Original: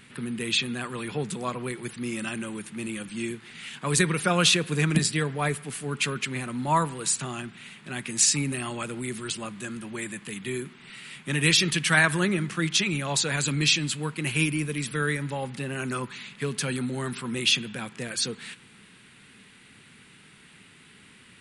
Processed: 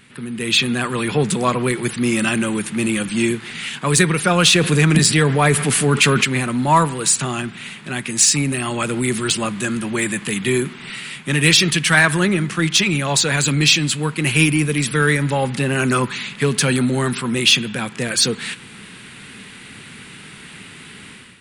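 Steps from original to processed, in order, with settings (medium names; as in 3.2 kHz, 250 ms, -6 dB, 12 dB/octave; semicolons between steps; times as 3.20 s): level rider gain up to 12 dB; in parallel at -6.5 dB: saturation -17 dBFS, distortion -9 dB; 4.55–6.24 s: on the sum: level flattener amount 50%; trim -1 dB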